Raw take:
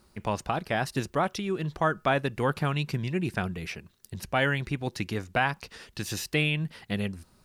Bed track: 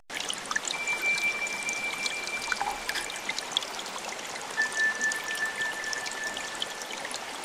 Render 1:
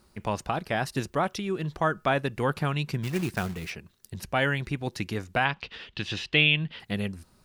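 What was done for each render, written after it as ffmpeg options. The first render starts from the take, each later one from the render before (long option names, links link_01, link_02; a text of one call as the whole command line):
ffmpeg -i in.wav -filter_complex "[0:a]asplit=3[link_01][link_02][link_03];[link_01]afade=type=out:start_time=3.02:duration=0.02[link_04];[link_02]acrusher=bits=3:mode=log:mix=0:aa=0.000001,afade=type=in:start_time=3.02:duration=0.02,afade=type=out:start_time=3.69:duration=0.02[link_05];[link_03]afade=type=in:start_time=3.69:duration=0.02[link_06];[link_04][link_05][link_06]amix=inputs=3:normalize=0,asettb=1/sr,asplit=3[link_07][link_08][link_09];[link_07]atrim=end=5.454[link_10];[link_08]atrim=start=5.45:end=6.8,asetpts=PTS-STARTPTS,afade=type=in:duration=0.004:curve=qsin,afade=type=out:start_time=1.346:duration=0.004:curve=qsin,lowpass=frequency=3200:width_type=q:width=3.1[link_11];[link_09]atrim=start=6.796[link_12];[link_10][link_11]acrossfade=duration=0.004:curve1=hsin:curve2=qsin[link_13];[link_13][link_12]acrossfade=duration=0.004:curve1=qsin:curve2=hsin" out.wav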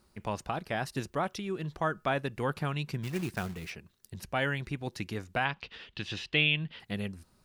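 ffmpeg -i in.wav -af "volume=-5dB" out.wav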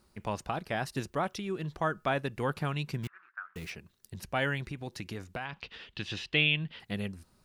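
ffmpeg -i in.wav -filter_complex "[0:a]asettb=1/sr,asplit=3[link_01][link_02][link_03];[link_01]atrim=end=3.074[link_04];[link_02]atrim=start=3.07:end=3.56,asetpts=PTS-STARTPTS,afade=type=in:duration=0.004:curve=qsin,afade=type=out:start_time=0.486:duration=0.004:curve=qsin,asuperpass=centerf=1400:order=4:qfactor=3.2[link_05];[link_03]atrim=start=3.556[link_06];[link_04][link_05]acrossfade=duration=0.004:curve1=hsin:curve2=qsin[link_07];[link_07][link_06]acrossfade=duration=0.004:curve1=qsin:curve2=hsin,asettb=1/sr,asplit=3[link_08][link_09][link_10];[link_08]atrim=end=4.714[link_11];[link_09]atrim=start=4.71:end=5.53,asetpts=PTS-STARTPTS,afade=type=in:duration=0.004:curve=qsin,afade=type=out:start_time=0.816:duration=0.004:curve=qsin,acompressor=threshold=-34dB:ratio=4:attack=3.2:release=140:knee=1:detection=peak[link_12];[link_10]atrim=start=5.526[link_13];[link_11][link_12]acrossfade=duration=0.004:curve1=hsin:curve2=qsin[link_14];[link_14][link_13]acrossfade=duration=0.004:curve1=qsin:curve2=hsin" out.wav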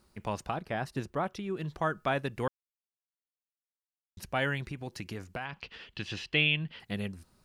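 ffmpeg -i in.wav -filter_complex "[0:a]asettb=1/sr,asplit=3[link_01][link_02][link_03];[link_01]atrim=end=0.544[link_04];[link_02]atrim=start=0.54:end=1.57,asetpts=PTS-STARTPTS,afade=type=in:duration=0.004:curve=qsin,afade=type=out:start_time=1.026:duration=0.004:curve=qsin,highshelf=frequency=2700:gain=-8[link_05];[link_03]atrim=start=1.566[link_06];[link_04][link_05]acrossfade=duration=0.004:curve1=hsin:curve2=qsin[link_07];[link_07][link_06]acrossfade=duration=0.004:curve1=qsin:curve2=hsin,asettb=1/sr,asplit=3[link_08][link_09][link_10];[link_08]atrim=end=4.714[link_11];[link_09]atrim=start=4.71:end=6.87,asetpts=PTS-STARTPTS,afade=type=in:duration=0.004:curve=qsin,afade=type=out:start_time=2.156:duration=0.004:curve=qsin,bandreject=frequency=3700:width=12[link_12];[link_10]atrim=start=6.866[link_13];[link_11][link_12]acrossfade=duration=0.004:curve1=hsin:curve2=qsin[link_14];[link_14][link_13]acrossfade=duration=0.004:curve1=qsin:curve2=hsin,asplit=3[link_15][link_16][link_17];[link_15]atrim=end=2.48,asetpts=PTS-STARTPTS,afade=type=out:start_time=2.476:duration=0.004:curve=hsin[link_18];[link_16]atrim=start=2.48:end=4.17,asetpts=PTS-STARTPTS,volume=0[link_19];[link_17]atrim=start=4.17,asetpts=PTS-STARTPTS,afade=type=in:duration=0.004:curve=hsin[link_20];[link_18][link_19][link_20]concat=n=3:v=0:a=1" out.wav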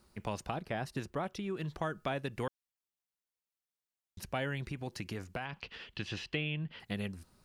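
ffmpeg -i in.wav -filter_complex "[0:a]acrossover=split=830|1900[link_01][link_02][link_03];[link_01]acompressor=threshold=-34dB:ratio=4[link_04];[link_02]acompressor=threshold=-46dB:ratio=4[link_05];[link_03]acompressor=threshold=-42dB:ratio=4[link_06];[link_04][link_05][link_06]amix=inputs=3:normalize=0" out.wav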